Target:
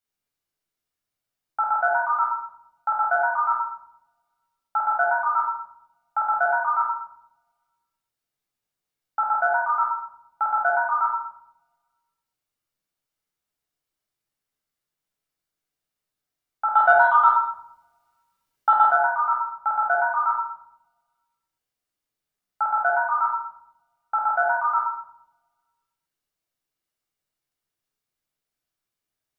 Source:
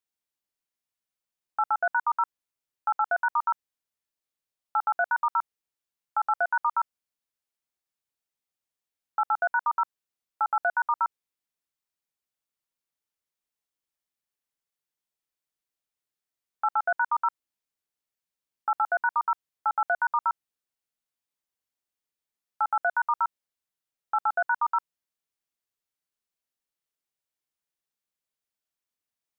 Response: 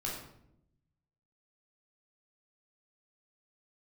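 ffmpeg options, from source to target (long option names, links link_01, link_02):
-filter_complex "[0:a]asettb=1/sr,asplit=3[link_01][link_02][link_03];[link_01]atrim=end=16.744[link_04];[link_02]atrim=start=16.74:end=18.88,asetpts=PTS-STARTPTS,afade=type=in:duration=0.004:curve=qsin,afade=type=out:start_time=2.136:duration=0.004:curve=qsin,acontrast=70[link_05];[link_03]atrim=start=18.876[link_06];[link_04][link_05]acrossfade=duration=0.004:curve1=hsin:curve2=qsin[link_07];[link_07][link_06]acrossfade=duration=0.004:curve1=qsin:curve2=hsin[link_08];[1:a]atrim=start_sample=2205[link_09];[link_08][link_09]afir=irnorm=-1:irlink=0,volume=2.5dB"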